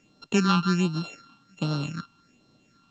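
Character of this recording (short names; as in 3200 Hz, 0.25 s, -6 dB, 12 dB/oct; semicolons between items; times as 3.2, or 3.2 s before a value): a buzz of ramps at a fixed pitch in blocks of 32 samples; phasing stages 6, 1.3 Hz, lowest notch 520–2100 Hz; A-law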